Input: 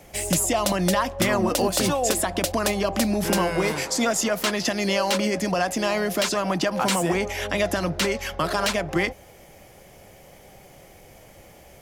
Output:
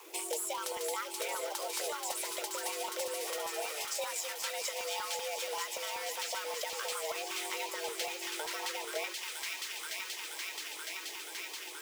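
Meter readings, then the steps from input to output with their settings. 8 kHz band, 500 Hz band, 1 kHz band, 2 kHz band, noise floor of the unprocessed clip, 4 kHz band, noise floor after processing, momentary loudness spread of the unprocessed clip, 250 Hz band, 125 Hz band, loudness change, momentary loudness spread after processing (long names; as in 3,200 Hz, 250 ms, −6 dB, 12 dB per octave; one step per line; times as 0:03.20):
−9.0 dB, −15.0 dB, −12.5 dB, −11.5 dB, −49 dBFS, −8.5 dB, −44 dBFS, 3 LU, −28.0 dB, below −40 dB, −13.0 dB, 4 LU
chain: log-companded quantiser 4 bits
frequency shifter +300 Hz
notch filter 1,700 Hz, Q 21
on a send: delay with a high-pass on its return 479 ms, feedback 81%, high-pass 1,900 Hz, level −5 dB
on the sum: downward compressor 2.5 to 1, threshold −35 dBFS, peak gain reduction 12.5 dB
auto-filter notch saw up 5.2 Hz 560–1,600 Hz
level −3 dB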